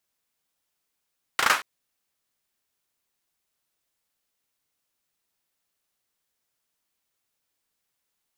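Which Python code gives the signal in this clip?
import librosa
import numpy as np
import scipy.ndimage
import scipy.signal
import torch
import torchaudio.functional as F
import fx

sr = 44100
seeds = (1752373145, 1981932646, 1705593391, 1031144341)

y = fx.drum_clap(sr, seeds[0], length_s=0.23, bursts=4, spacing_ms=36, hz=1300.0, decay_s=0.3)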